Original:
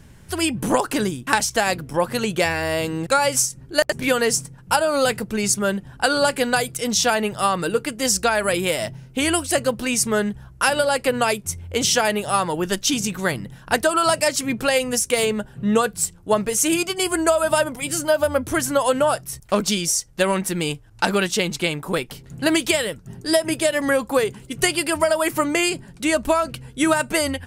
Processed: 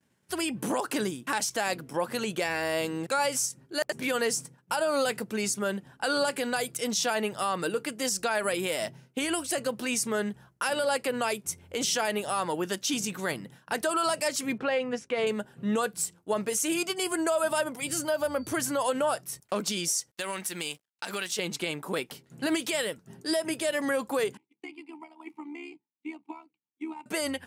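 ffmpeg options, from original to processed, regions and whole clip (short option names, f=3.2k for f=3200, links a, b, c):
-filter_complex "[0:a]asettb=1/sr,asplit=3[a][b][c];[a]atrim=end=14.584[d];[b]atrim=start=14.58:end=15.27,asetpts=PTS-STARTPTS,afade=t=in:d=0.004:c=qsin,afade=t=out:st=0.686:d=0.004:c=qsin,lowpass=2.3k,agate=range=-33dB:threshold=-42dB:ratio=3:release=100:detection=peak[e];[c]atrim=start=15.266[f];[d][e]acrossfade=d=0.004:c1=hsin:c2=qsin[g];[g][f]acrossfade=d=0.004:c1=qsin:c2=hsin,asettb=1/sr,asplit=3[h][i][j];[h]atrim=end=17.794[k];[i]atrim=start=17.79:end=18.87,asetpts=PTS-STARTPTS,afade=t=in:d=0.004:c=qsin,afade=t=out:st=1.076:d=0.004:c=qsin,equalizer=f=110:t=o:w=0.42:g=10.5,aeval=exprs='val(0)+0.00355*sin(2*PI*4600*n/s)':c=same[l];[j]atrim=start=18.866[m];[k][l]acrossfade=d=0.004:c1=hsin:c2=qsin[n];[n][m]acrossfade=d=0.004:c1=qsin:c2=hsin,asettb=1/sr,asplit=3[o][p][q];[o]atrim=end=20.114[r];[p]atrim=start=20.11:end=21.39,asetpts=PTS-STARTPTS,afade=t=in:d=0.004:c=qsin,afade=t=out:st=1.276:d=0.004:c=qsin,tiltshelf=f=1.1k:g=-6,acompressor=threshold=-23dB:ratio=4:attack=3.2:release=140:knee=1:detection=peak,aeval=exprs='sgn(val(0))*max(abs(val(0))-0.00299,0)':c=same[s];[q]atrim=start=21.386[t];[r][s]acrossfade=d=0.004:c1=hsin:c2=qsin[u];[u][t]acrossfade=d=0.004:c1=qsin:c2=hsin,asettb=1/sr,asplit=3[v][w][x];[v]atrim=end=24.374[y];[w]atrim=start=24.37:end=27.06,asetpts=PTS-STARTPTS,afade=t=in:d=0.004:c=qsin,afade=t=out:st=2.686:d=0.004:c=qsin,equalizer=f=240:t=o:w=0.43:g=-12,tremolo=f=71:d=0.788,asplit=3[z][aa][ab];[z]bandpass=f=300:t=q:w=8,volume=0dB[ac];[aa]bandpass=f=870:t=q:w=8,volume=-6dB[ad];[ab]bandpass=f=2.24k:t=q:w=8,volume=-9dB[ae];[ac][ad][ae]amix=inputs=3:normalize=0[af];[x]atrim=start=27.056[ag];[y][af]acrossfade=d=0.004:c1=hsin:c2=qsin[ah];[ah][ag]acrossfade=d=0.004:c1=qsin:c2=hsin,alimiter=limit=-12.5dB:level=0:latency=1:release=44,agate=range=-33dB:threshold=-36dB:ratio=3:detection=peak,highpass=200,volume=-5.5dB"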